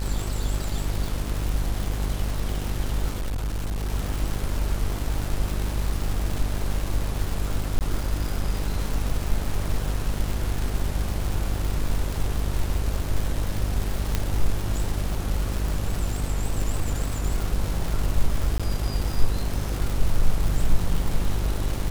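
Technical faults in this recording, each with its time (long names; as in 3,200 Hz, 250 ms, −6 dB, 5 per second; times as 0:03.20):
mains buzz 50 Hz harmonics 31 −28 dBFS
surface crackle 340 per second −27 dBFS
0:03.10–0:03.90: clipping −24 dBFS
0:07.79–0:07.81: drop-out 18 ms
0:14.15: click −8 dBFS
0:18.58–0:18.60: drop-out 16 ms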